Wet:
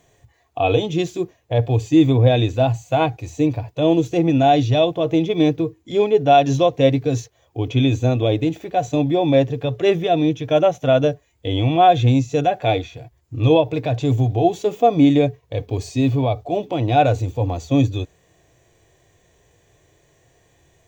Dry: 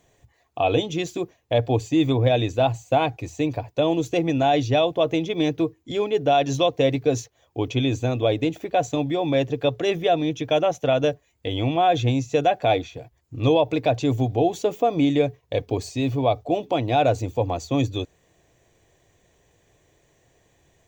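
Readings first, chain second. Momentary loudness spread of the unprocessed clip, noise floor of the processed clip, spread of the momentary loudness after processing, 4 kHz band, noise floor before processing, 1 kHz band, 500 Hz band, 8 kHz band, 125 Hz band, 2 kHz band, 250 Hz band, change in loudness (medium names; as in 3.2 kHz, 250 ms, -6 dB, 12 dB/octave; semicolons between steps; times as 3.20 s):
7 LU, -61 dBFS, 10 LU, +1.0 dB, -65 dBFS, +4.0 dB, +3.5 dB, no reading, +6.5 dB, +1.5 dB, +5.5 dB, +4.5 dB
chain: harmonic-percussive split percussive -11 dB; trim +7 dB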